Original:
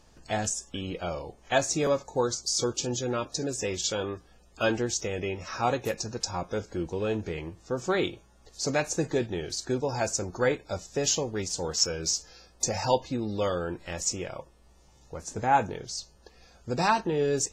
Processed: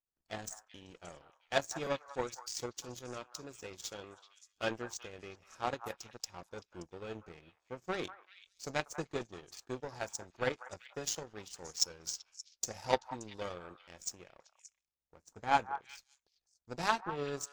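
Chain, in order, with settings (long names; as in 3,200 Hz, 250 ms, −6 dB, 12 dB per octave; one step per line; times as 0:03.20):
power curve on the samples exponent 2
echo through a band-pass that steps 192 ms, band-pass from 1,100 Hz, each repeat 1.4 octaves, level −9 dB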